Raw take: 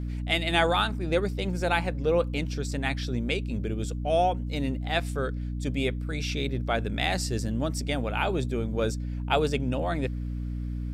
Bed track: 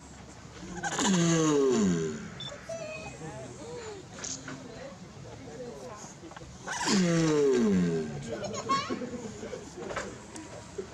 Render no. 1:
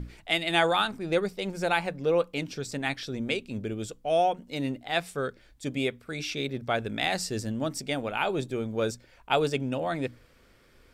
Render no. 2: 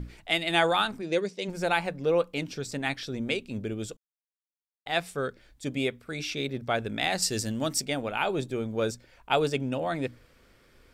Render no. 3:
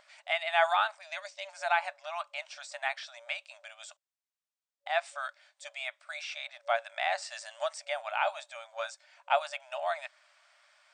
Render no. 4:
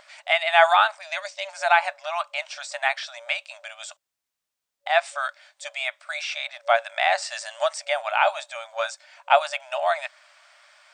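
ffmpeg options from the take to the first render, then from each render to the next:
-af "bandreject=f=60:t=h:w=6,bandreject=f=120:t=h:w=6,bandreject=f=180:t=h:w=6,bandreject=f=240:t=h:w=6,bandreject=f=300:t=h:w=6"
-filter_complex "[0:a]asplit=3[s0][s1][s2];[s0]afade=t=out:st=1.01:d=0.02[s3];[s1]highpass=190,equalizer=f=780:t=q:w=4:g=-9,equalizer=f=1300:t=q:w=4:g=-10,equalizer=f=6200:t=q:w=4:g=7,lowpass=f=8700:w=0.5412,lowpass=f=8700:w=1.3066,afade=t=in:st=1.01:d=0.02,afade=t=out:st=1.47:d=0.02[s4];[s2]afade=t=in:st=1.47:d=0.02[s5];[s3][s4][s5]amix=inputs=3:normalize=0,asettb=1/sr,asplit=3[s6][s7][s8];[s6]atrim=end=7.224[s9];[s7]atrim=start=7.22:end=7.85,asetpts=PTS-STARTPTS,afade=t=in:d=0.004:c=qsin,afade=t=out:st=0.626:d=0.004:c=qsin,highshelf=f=2200:g=9[s10];[s8]atrim=start=7.846[s11];[s9][s10]acrossfade=d=0.004:c1=hsin:c2=qsin[s12];[s12][s11]acrossfade=d=0.004:c1=qsin:c2=hsin,asplit=3[s13][s14][s15];[s13]atrim=end=3.97,asetpts=PTS-STARTPTS,afade=t=out:st=3.966:d=0.004:c=hsin[s16];[s14]atrim=start=3.97:end=4.86,asetpts=PTS-STARTPTS,volume=0[s17];[s15]atrim=start=4.86,asetpts=PTS-STARTPTS,afade=t=in:d=0.004:c=hsin[s18];[s16][s17][s18]concat=n=3:v=0:a=1"
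-filter_complex "[0:a]acrossover=split=2600[s0][s1];[s1]acompressor=threshold=0.00708:ratio=4:attack=1:release=60[s2];[s0][s2]amix=inputs=2:normalize=0,afftfilt=real='re*between(b*sr/4096,570,9100)':imag='im*between(b*sr/4096,570,9100)':win_size=4096:overlap=0.75"
-af "volume=2.99"

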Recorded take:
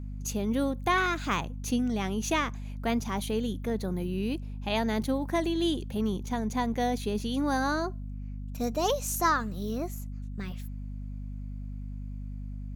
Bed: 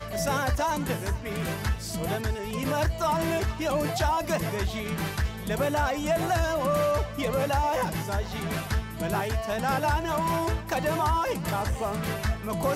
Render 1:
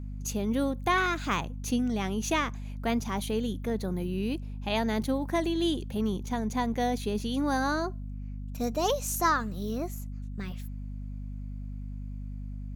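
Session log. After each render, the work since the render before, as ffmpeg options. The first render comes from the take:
-af anull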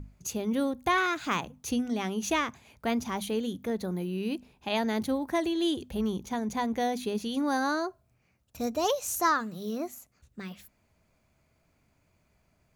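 -af "bandreject=f=50:t=h:w=6,bandreject=f=100:t=h:w=6,bandreject=f=150:t=h:w=6,bandreject=f=200:t=h:w=6,bandreject=f=250:t=h:w=6"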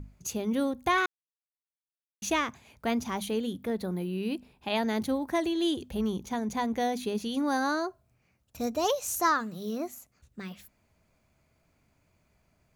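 -filter_complex "[0:a]asettb=1/sr,asplit=3[s0][s1][s2];[s0]atrim=end=3.384[s3];[s1]atrim=start=3.38:end=4.83,asetpts=PTS-STARTPTS,afade=t=in:d=0.004:c=qsin,afade=t=out:st=1.446:d=0.004:c=qsin,equalizer=f=6300:w=7.8:g=-11[s4];[s2]atrim=start=4.826[s5];[s3][s4]acrossfade=d=0.004:c1=hsin:c2=qsin[s6];[s6][s5]acrossfade=d=0.004:c1=qsin:c2=hsin,asplit=3[s7][s8][s9];[s7]atrim=end=1.06,asetpts=PTS-STARTPTS,afade=t=out:st=1.056:d=0.004:c=hsin[s10];[s8]atrim=start=1.06:end=2.22,asetpts=PTS-STARTPTS,volume=0[s11];[s9]atrim=start=2.22,asetpts=PTS-STARTPTS,afade=t=in:d=0.004:c=hsin[s12];[s10][s11][s12]concat=n=3:v=0:a=1"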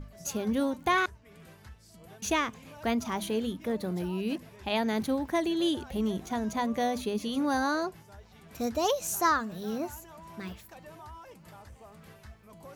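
-filter_complex "[1:a]volume=0.0794[s0];[0:a][s0]amix=inputs=2:normalize=0"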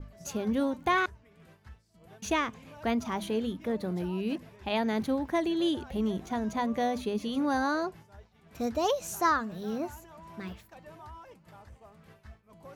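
-af "agate=range=0.0224:threshold=0.00447:ratio=3:detection=peak,highshelf=f=5200:g=-8"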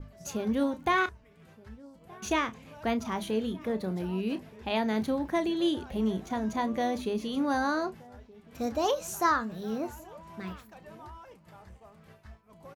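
-filter_complex "[0:a]asplit=2[s0][s1];[s1]adelay=32,volume=0.237[s2];[s0][s2]amix=inputs=2:normalize=0,asplit=2[s3][s4];[s4]adelay=1224,volume=0.0794,highshelf=f=4000:g=-27.6[s5];[s3][s5]amix=inputs=2:normalize=0"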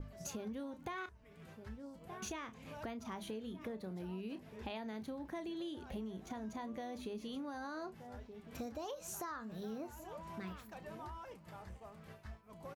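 -af "alimiter=limit=0.0668:level=0:latency=1:release=328,acompressor=threshold=0.00708:ratio=4"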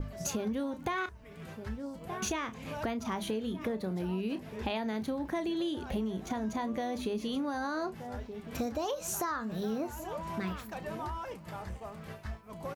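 -af "volume=3.16"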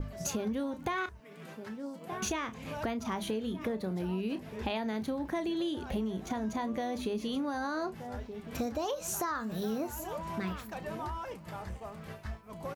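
-filter_complex "[0:a]asettb=1/sr,asplit=3[s0][s1][s2];[s0]atrim=end=1.204[s3];[s1]atrim=start=1.2:end=2.12,asetpts=PTS-STARTPTS,afade=t=in:d=0.004:c=qsin,afade=t=out:st=0.916:d=0.004:c=qsin,highpass=f=170:w=0.5412,highpass=f=170:w=1.3066[s4];[s2]atrim=start=2.116[s5];[s3][s4]acrossfade=d=0.004:c1=hsin:c2=qsin[s6];[s6][s5]acrossfade=d=0.004:c1=qsin:c2=hsin,asettb=1/sr,asplit=3[s7][s8][s9];[s7]atrim=end=9.354[s10];[s8]atrim=start=9.35:end=10.18,asetpts=PTS-STARTPTS,afade=t=in:d=0.004:c=qsin,afade=t=out:st=0.826:d=0.004:c=qsin,highshelf=f=7100:g=8.5[s11];[s9]atrim=start=10.176[s12];[s10][s11]acrossfade=d=0.004:c1=hsin:c2=qsin[s13];[s13][s12]acrossfade=d=0.004:c1=qsin:c2=hsin"

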